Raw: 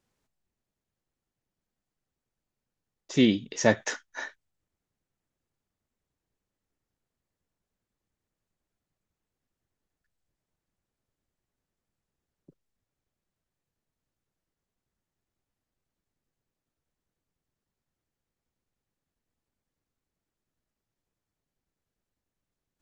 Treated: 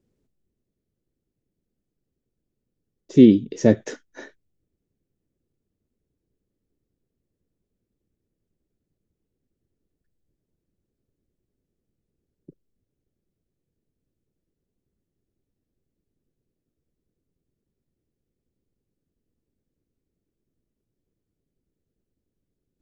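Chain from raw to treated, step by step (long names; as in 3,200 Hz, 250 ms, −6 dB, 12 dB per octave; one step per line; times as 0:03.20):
low shelf with overshoot 600 Hz +13.5 dB, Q 1.5
level −5.5 dB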